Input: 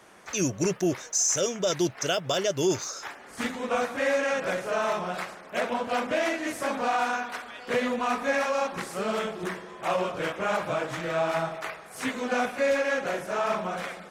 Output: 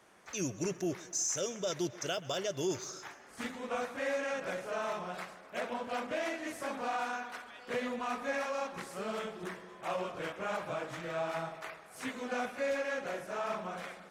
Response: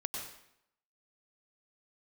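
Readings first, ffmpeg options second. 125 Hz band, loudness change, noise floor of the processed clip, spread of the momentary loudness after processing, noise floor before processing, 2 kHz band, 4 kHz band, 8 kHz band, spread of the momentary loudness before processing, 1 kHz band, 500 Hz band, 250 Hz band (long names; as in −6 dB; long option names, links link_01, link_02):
−9.0 dB, −9.0 dB, −54 dBFS, 8 LU, −47 dBFS, −9.0 dB, −9.0 dB, −9.0 dB, 8 LU, −9.0 dB, −9.0 dB, −9.0 dB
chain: -filter_complex "[0:a]asplit=2[link_01][link_02];[1:a]atrim=start_sample=2205,adelay=131[link_03];[link_02][link_03]afir=irnorm=-1:irlink=0,volume=-19dB[link_04];[link_01][link_04]amix=inputs=2:normalize=0,volume=-9dB"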